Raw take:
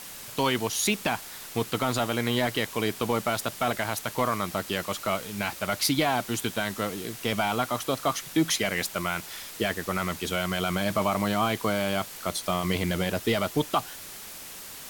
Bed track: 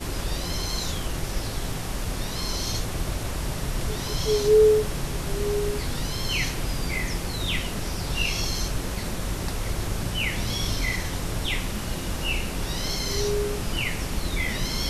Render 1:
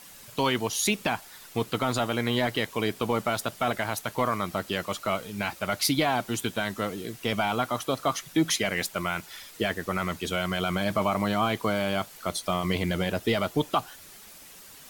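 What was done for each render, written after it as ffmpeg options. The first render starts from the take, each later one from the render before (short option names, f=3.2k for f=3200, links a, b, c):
-af "afftdn=nr=8:nf=-42"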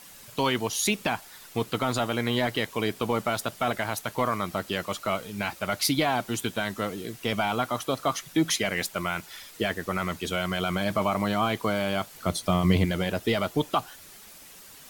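-filter_complex "[0:a]asettb=1/sr,asplit=3[a][b][c];[a]atrim=end=12.154[d];[b]atrim=start=12.15:end=12.85,asetpts=PTS-STARTPTS,afade=t=in:d=0.004:c=qsin,afade=t=out:st=0.696:d=0.004:c=qsin,equalizer=f=100:w=0.39:g=9.5[e];[c]atrim=start=12.846[f];[d][e]acrossfade=d=0.004:c1=hsin:c2=qsin[g];[g][f]acrossfade=d=0.004:c1=qsin:c2=hsin"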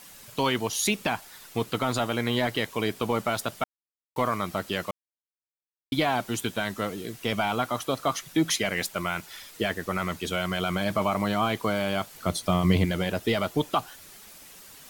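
-filter_complex "[0:a]asplit=5[a][b][c][d][e];[a]atrim=end=3.64,asetpts=PTS-STARTPTS,afade=t=out:st=3.636:d=0.004:c=hsin[f];[b]atrim=start=3.64:end=4.16,asetpts=PTS-STARTPTS,volume=0[g];[c]atrim=start=4.16:end=4.91,asetpts=PTS-STARTPTS,afade=t=in:d=0.004:c=hsin,afade=t=out:st=0.746:d=0.004:c=hsin[h];[d]atrim=start=4.91:end=5.92,asetpts=PTS-STARTPTS,volume=0[i];[e]atrim=start=5.92,asetpts=PTS-STARTPTS,afade=t=in:d=0.004:c=hsin[j];[f][g][h][i][j]concat=n=5:v=0:a=1"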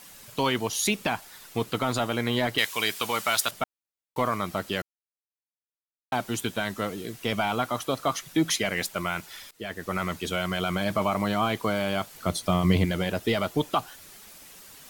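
-filter_complex "[0:a]asettb=1/sr,asplit=3[a][b][c];[a]atrim=end=2.584[d];[b]atrim=start=2.58:end=3.51,asetpts=PTS-STARTPTS,afade=t=in:d=0.004:c=qsin,afade=t=out:st=0.926:d=0.004:c=qsin,tiltshelf=f=880:g=-10[e];[c]atrim=start=3.506[f];[d][e]acrossfade=d=0.004:c1=hsin:c2=qsin[g];[g][f]acrossfade=d=0.004:c1=qsin:c2=hsin,asplit=4[h][i][j][k];[h]atrim=end=4.82,asetpts=PTS-STARTPTS,afade=t=out:st=4.816:d=0.004:c=hsin[l];[i]atrim=start=4.82:end=6.12,asetpts=PTS-STARTPTS,volume=0[m];[j]atrim=start=6.12:end=9.51,asetpts=PTS-STARTPTS,afade=t=in:d=0.004:c=hsin,afade=t=out:st=3.386:d=0.004:c=hsin:silence=0.1[n];[k]atrim=start=9.51,asetpts=PTS-STARTPTS,afade=t=in:d=0.45:silence=0.1[o];[l][m][n][o]concat=n=4:v=0:a=1"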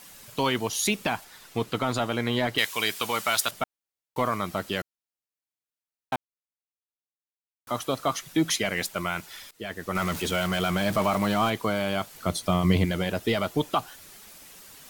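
-filter_complex "[0:a]asettb=1/sr,asplit=3[a][b][c];[a]atrim=end=1.244[d];[b]atrim=start=1.24:end=2.56,asetpts=PTS-STARTPTS,afade=t=in:d=0.004:c=qsin,afade=t=out:st=1.316:d=0.004:c=qsin,highshelf=f=8.2k:g=-6[e];[c]atrim=start=2.556[f];[d][e]acrossfade=d=0.004:c1=hsin:c2=qsin[g];[g][f]acrossfade=d=0.004:c1=qsin:c2=hsin,asettb=1/sr,asplit=3[h][i][j];[h]atrim=end=9.954[k];[i]atrim=start=9.95:end=11.5,asetpts=PTS-STARTPTS,afade=t=in:d=0.004:c=qsin,afade=t=out:st=1.546:d=0.004:c=qsin,aeval=exprs='val(0)+0.5*0.0266*sgn(val(0))':c=same[l];[j]atrim=start=11.496[m];[k][l]acrossfade=d=0.004:c1=hsin:c2=qsin[n];[n][m]acrossfade=d=0.004:c1=qsin:c2=hsin,asplit=3[o][p][q];[o]atrim=end=6.16,asetpts=PTS-STARTPTS,afade=t=out:st=6.156:d=0.004:c=hsin[r];[p]atrim=start=6.16:end=7.67,asetpts=PTS-STARTPTS,volume=0[s];[q]atrim=start=7.67,asetpts=PTS-STARTPTS,afade=t=in:d=0.004:c=hsin[t];[r][s][t]concat=n=3:v=0:a=1"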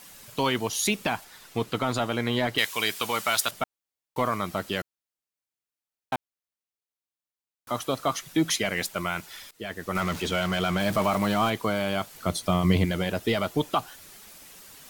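-filter_complex "[0:a]asettb=1/sr,asplit=3[a][b][c];[a]atrim=end=10.004[d];[b]atrim=start=10:end=10.8,asetpts=PTS-STARTPTS,afade=t=in:d=0.004:c=qsin,afade=t=out:st=0.796:d=0.004:c=qsin,acrossover=split=6900[e][f];[f]acompressor=threshold=-44dB:ratio=4:attack=1:release=60[g];[e][g]amix=inputs=2:normalize=0[h];[c]atrim=start=10.796[i];[d][h]acrossfade=d=0.004:c1=hsin:c2=qsin[j];[j][i]acrossfade=d=0.004:c1=qsin:c2=hsin"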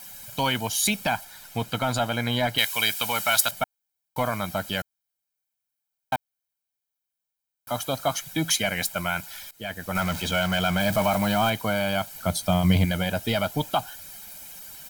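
-af "highshelf=f=12k:g=11,aecho=1:1:1.3:0.63"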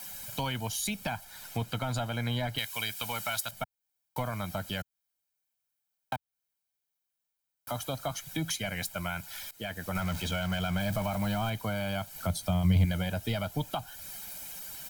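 -filter_complex "[0:a]acrossover=split=140[a][b];[b]acompressor=threshold=-36dB:ratio=2.5[c];[a][c]amix=inputs=2:normalize=0"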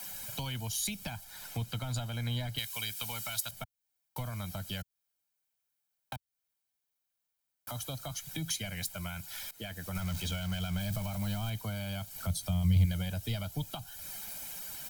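-filter_complex "[0:a]acrossover=split=170|3000[a][b][c];[b]acompressor=threshold=-45dB:ratio=3[d];[a][d][c]amix=inputs=3:normalize=0"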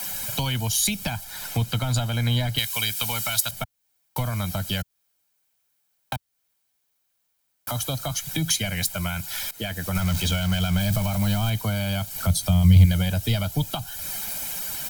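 -af "volume=11.5dB"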